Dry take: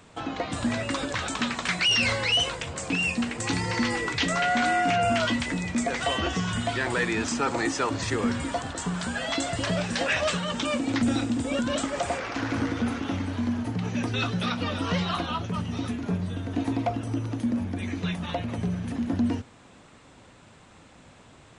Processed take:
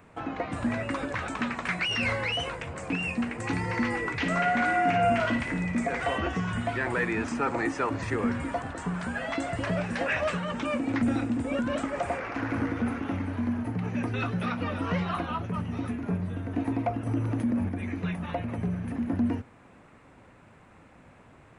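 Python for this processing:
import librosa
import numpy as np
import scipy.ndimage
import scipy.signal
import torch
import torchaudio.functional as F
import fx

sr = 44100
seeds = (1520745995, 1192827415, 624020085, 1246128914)

y = fx.band_shelf(x, sr, hz=5100.0, db=-12.0, octaves=1.7)
y = fx.room_flutter(y, sr, wall_m=9.6, rt60_s=0.43, at=(4.18, 6.18))
y = fx.env_flatten(y, sr, amount_pct=50, at=(17.06, 17.69))
y = F.gain(torch.from_numpy(y), -1.5).numpy()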